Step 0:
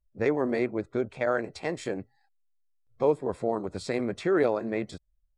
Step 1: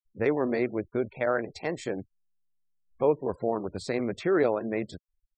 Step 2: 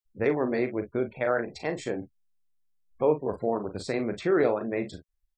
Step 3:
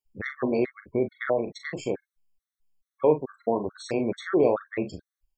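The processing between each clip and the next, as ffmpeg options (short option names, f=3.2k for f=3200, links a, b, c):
-af "afftfilt=real='re*gte(hypot(re,im),0.00562)':imag='im*gte(hypot(re,im),0.00562)':win_size=1024:overlap=0.75"
-af "aecho=1:1:39|53:0.355|0.133"
-af "afftfilt=real='re*gt(sin(2*PI*2.3*pts/sr)*(1-2*mod(floor(b*sr/1024/1100),2)),0)':imag='im*gt(sin(2*PI*2.3*pts/sr)*(1-2*mod(floor(b*sr/1024/1100),2)),0)':win_size=1024:overlap=0.75,volume=3dB"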